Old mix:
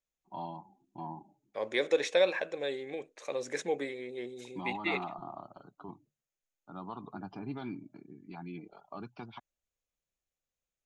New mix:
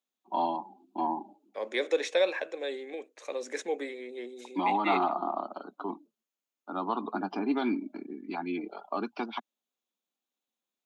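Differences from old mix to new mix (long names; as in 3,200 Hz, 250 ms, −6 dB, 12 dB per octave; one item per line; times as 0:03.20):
first voice +12.0 dB
master: add Butterworth high-pass 220 Hz 48 dB per octave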